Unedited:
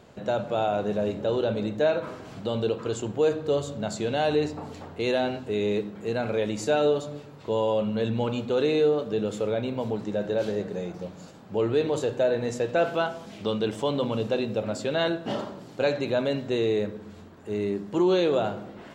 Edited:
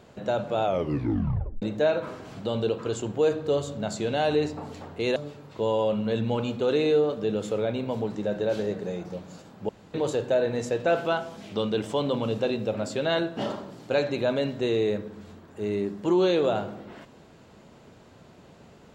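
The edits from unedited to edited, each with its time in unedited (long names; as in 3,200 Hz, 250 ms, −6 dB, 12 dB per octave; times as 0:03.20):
0:00.64: tape stop 0.98 s
0:05.16–0:07.05: remove
0:11.58–0:11.83: fill with room tone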